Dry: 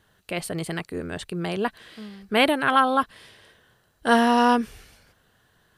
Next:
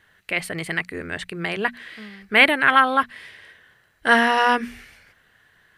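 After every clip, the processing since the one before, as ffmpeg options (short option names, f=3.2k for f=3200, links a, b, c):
-af "equalizer=f=2k:t=o:w=0.92:g=14,bandreject=f=60:t=h:w=6,bandreject=f=120:t=h:w=6,bandreject=f=180:t=h:w=6,bandreject=f=240:t=h:w=6,volume=-1.5dB"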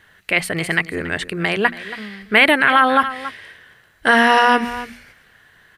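-af "aecho=1:1:278:0.15,alimiter=level_in=7.5dB:limit=-1dB:release=50:level=0:latency=1,volume=-1dB"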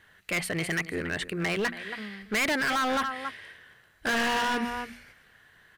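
-af "asoftclip=type=hard:threshold=-17.5dB,volume=-6.5dB"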